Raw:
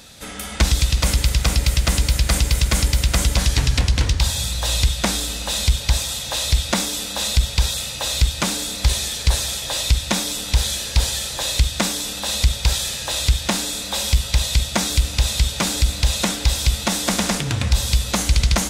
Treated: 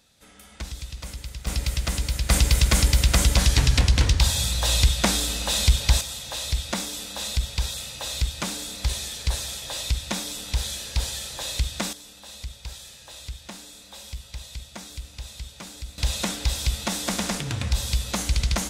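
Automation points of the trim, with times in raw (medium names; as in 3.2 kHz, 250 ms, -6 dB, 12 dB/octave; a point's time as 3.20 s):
-18 dB
from 1.47 s -8 dB
from 2.30 s -1 dB
from 6.01 s -8 dB
from 11.93 s -19 dB
from 15.98 s -6.5 dB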